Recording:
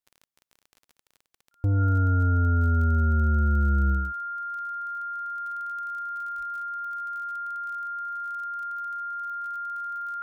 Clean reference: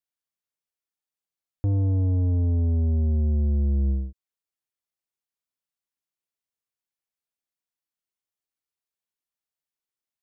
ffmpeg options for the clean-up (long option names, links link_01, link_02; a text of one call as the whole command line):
ffmpeg -i in.wav -filter_complex "[0:a]adeclick=threshold=4,bandreject=frequency=1400:width=30,asplit=3[link_01][link_02][link_03];[link_01]afade=type=out:start_time=6.37:duration=0.02[link_04];[link_02]highpass=frequency=140:width=0.5412,highpass=frequency=140:width=1.3066,afade=type=in:start_time=6.37:duration=0.02,afade=type=out:start_time=6.49:duration=0.02[link_05];[link_03]afade=type=in:start_time=6.49:duration=0.02[link_06];[link_04][link_05][link_06]amix=inputs=3:normalize=0" out.wav